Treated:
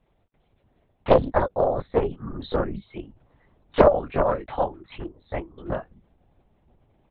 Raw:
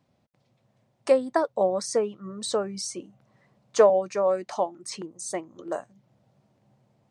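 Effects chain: doubling 15 ms -5.5 dB; LPC vocoder at 8 kHz whisper; loudspeaker Doppler distortion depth 0.93 ms; trim +1.5 dB

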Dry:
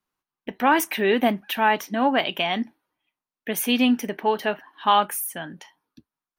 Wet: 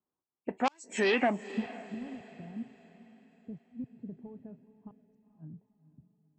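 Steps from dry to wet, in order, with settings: knee-point frequency compression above 2.2 kHz 1.5:1; saturation -15 dBFS, distortion -14 dB; high-pass 58 Hz 12 dB/octave; tone controls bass -5 dB, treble +14 dB; level-controlled noise filter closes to 600 Hz, open at -16 dBFS; inverted gate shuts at -12 dBFS, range -40 dB; compression, threshold -24 dBFS, peak gain reduction 6 dB; low-pass sweep 7.8 kHz -> 130 Hz, 0.99–1.67 s; echo that smears into a reverb 481 ms, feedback 43%, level -15.5 dB

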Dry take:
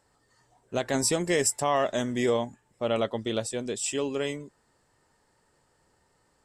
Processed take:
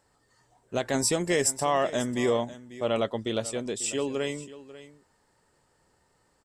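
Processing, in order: delay 543 ms -16.5 dB

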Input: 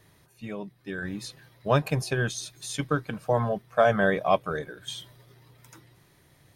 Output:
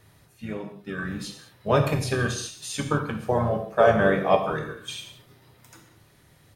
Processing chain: gated-style reverb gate 240 ms falling, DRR 3 dB; harmony voices -5 st -8 dB

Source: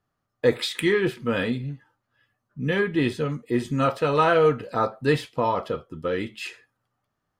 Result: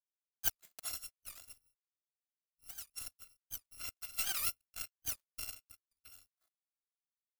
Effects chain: bit-reversed sample order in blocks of 256 samples; power-law waveshaper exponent 3; warped record 78 rpm, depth 250 cents; trim -6 dB

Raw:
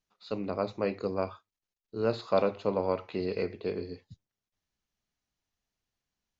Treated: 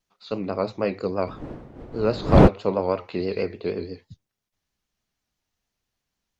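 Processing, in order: 1.26–2.47 s: wind noise 370 Hz -31 dBFS; vibrato 6.2 Hz 80 cents; trim +5.5 dB

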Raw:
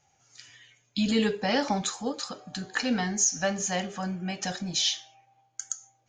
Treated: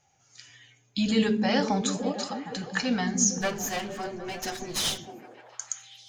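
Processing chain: 3.41–4.98 s: comb filter that takes the minimum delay 8.1 ms; repeats whose band climbs or falls 152 ms, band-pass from 150 Hz, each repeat 0.7 oct, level -0.5 dB

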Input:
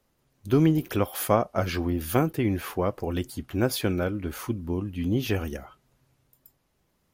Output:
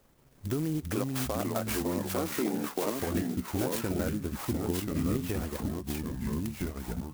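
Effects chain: 0.89–2.95 s: high-pass 230 Hz 24 dB/octave; peak limiter -18.5 dBFS, peak gain reduction 10.5 dB; transient shaper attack +3 dB, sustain -9 dB; compression 2:1, threshold -47 dBFS, peak gain reduction 13.5 dB; ever faster or slower copies 311 ms, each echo -3 st, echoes 3; sampling jitter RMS 0.069 ms; trim +7.5 dB

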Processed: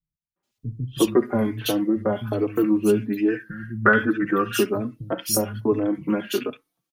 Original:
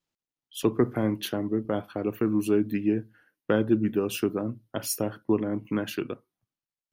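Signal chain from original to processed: 2.92–4.22 s: high-order bell 1.5 kHz +15 dB 1 oct; in parallel at -1 dB: compression, threshold -31 dBFS, peak gain reduction 17 dB; on the sum: three bands offset in time lows, mids, highs 360/430 ms, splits 160/1900 Hz; endless flanger 4.1 ms +1.2 Hz; trim +6 dB

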